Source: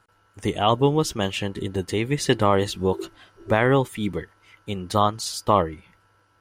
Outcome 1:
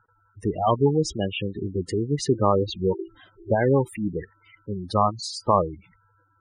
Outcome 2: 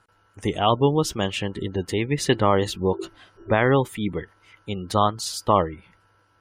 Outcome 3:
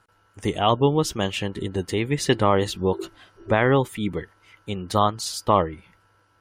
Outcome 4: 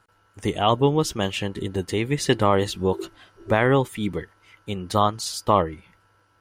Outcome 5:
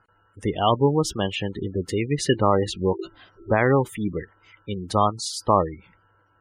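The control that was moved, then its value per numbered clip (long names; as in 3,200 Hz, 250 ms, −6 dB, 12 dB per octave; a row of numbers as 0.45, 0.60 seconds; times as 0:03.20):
gate on every frequency bin, under each frame's peak: −10, −35, −45, −60, −20 decibels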